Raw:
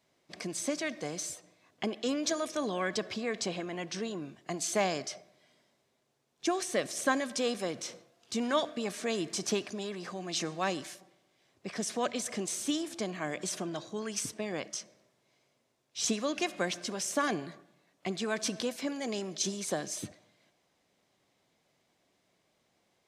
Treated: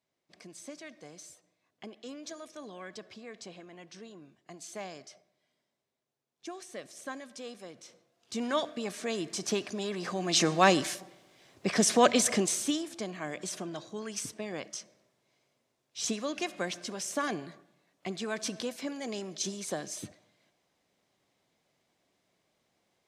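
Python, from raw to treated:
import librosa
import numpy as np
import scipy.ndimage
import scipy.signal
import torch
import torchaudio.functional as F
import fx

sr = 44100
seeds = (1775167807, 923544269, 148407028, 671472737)

y = fx.gain(x, sr, db=fx.line((7.92, -12.0), (8.42, -1.0), (9.41, -1.0), (10.56, 10.0), (12.28, 10.0), (12.88, -2.0)))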